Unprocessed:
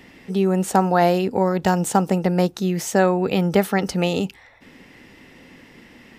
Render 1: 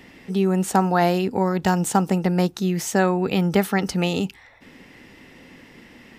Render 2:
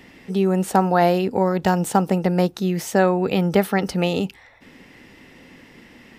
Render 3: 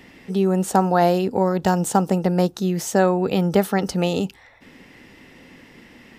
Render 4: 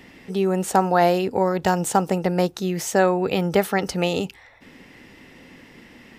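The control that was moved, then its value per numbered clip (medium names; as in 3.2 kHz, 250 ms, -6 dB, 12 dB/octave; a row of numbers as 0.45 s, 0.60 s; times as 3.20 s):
dynamic bell, frequency: 550 Hz, 7 kHz, 2.2 kHz, 210 Hz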